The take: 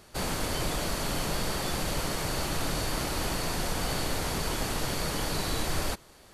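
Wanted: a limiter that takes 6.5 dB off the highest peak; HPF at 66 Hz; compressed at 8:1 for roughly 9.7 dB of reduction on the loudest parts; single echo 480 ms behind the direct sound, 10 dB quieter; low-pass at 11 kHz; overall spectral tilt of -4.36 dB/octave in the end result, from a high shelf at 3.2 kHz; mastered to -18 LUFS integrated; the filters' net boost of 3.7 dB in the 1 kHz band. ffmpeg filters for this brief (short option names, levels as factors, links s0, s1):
-af "highpass=66,lowpass=11000,equalizer=f=1000:t=o:g=5.5,highshelf=f=3200:g=-7.5,acompressor=threshold=0.0126:ratio=8,alimiter=level_in=2.99:limit=0.0631:level=0:latency=1,volume=0.335,aecho=1:1:480:0.316,volume=16.8"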